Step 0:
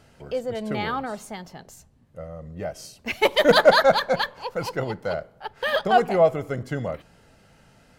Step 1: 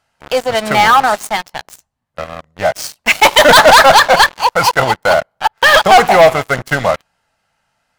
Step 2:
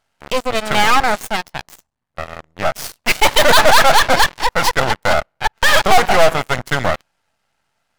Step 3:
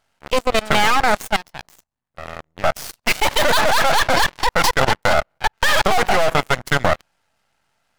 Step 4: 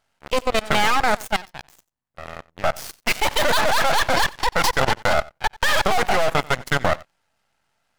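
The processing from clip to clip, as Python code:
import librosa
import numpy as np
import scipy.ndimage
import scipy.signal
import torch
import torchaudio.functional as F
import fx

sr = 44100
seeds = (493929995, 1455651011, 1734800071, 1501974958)

y1 = fx.low_shelf_res(x, sr, hz=580.0, db=-10.5, q=1.5)
y1 = fx.leveller(y1, sr, passes=5)
y1 = F.gain(torch.from_numpy(y1), 2.5).numpy()
y2 = np.maximum(y1, 0.0)
y3 = fx.level_steps(y2, sr, step_db=18)
y3 = F.gain(torch.from_numpy(y3), 4.0).numpy()
y4 = y3 + 10.0 ** (-22.5 / 20.0) * np.pad(y3, (int(91 * sr / 1000.0), 0))[:len(y3)]
y4 = F.gain(torch.from_numpy(y4), -3.0).numpy()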